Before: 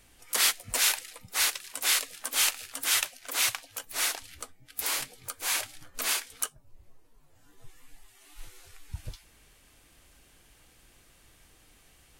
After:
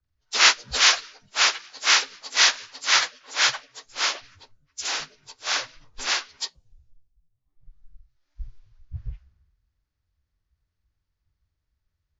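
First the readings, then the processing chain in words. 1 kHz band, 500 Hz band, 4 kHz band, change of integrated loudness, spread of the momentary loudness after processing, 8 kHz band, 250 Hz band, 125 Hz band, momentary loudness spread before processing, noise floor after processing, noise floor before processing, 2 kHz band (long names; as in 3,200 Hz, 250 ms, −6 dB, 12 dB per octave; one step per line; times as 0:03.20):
+10.0 dB, +6.0 dB, +8.5 dB, +6.5 dB, 19 LU, +2.0 dB, +2.5 dB, +4.5 dB, 16 LU, −80 dBFS, −61 dBFS, +9.0 dB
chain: partials spread apart or drawn together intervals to 81%
multiband upward and downward expander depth 100%
level +3 dB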